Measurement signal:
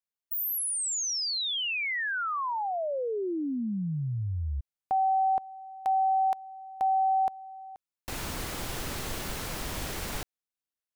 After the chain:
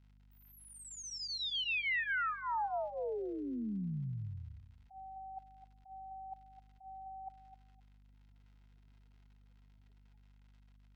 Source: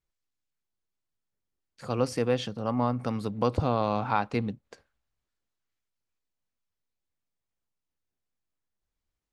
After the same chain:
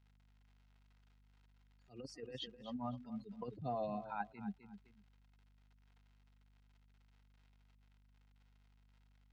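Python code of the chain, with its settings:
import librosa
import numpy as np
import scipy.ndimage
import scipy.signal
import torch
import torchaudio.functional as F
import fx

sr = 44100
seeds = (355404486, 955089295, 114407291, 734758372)

p1 = fx.bin_expand(x, sr, power=3.0)
p2 = fx.notch(p1, sr, hz=1100.0, q=5.2)
p3 = fx.dmg_crackle(p2, sr, seeds[0], per_s=140.0, level_db=-54.0)
p4 = scipy.signal.sosfilt(scipy.signal.butter(4, 99.0, 'highpass', fs=sr, output='sos'), p3)
p5 = fx.over_compress(p4, sr, threshold_db=-33.0, ratio=-0.5)
p6 = scipy.signal.sosfilt(scipy.signal.butter(2, 3400.0, 'lowpass', fs=sr, output='sos'), p5)
p7 = fx.low_shelf(p6, sr, hz=180.0, db=-7.0)
p8 = fx.notch_comb(p7, sr, f0_hz=580.0)
p9 = fx.add_hum(p8, sr, base_hz=50, snr_db=22)
p10 = fx.peak_eq(p9, sr, hz=330.0, db=-6.0, octaves=0.82)
p11 = p10 + fx.echo_feedback(p10, sr, ms=257, feedback_pct=20, wet_db=-12.5, dry=0)
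p12 = fx.attack_slew(p11, sr, db_per_s=160.0)
y = p12 * 10.0 ** (-2.0 / 20.0)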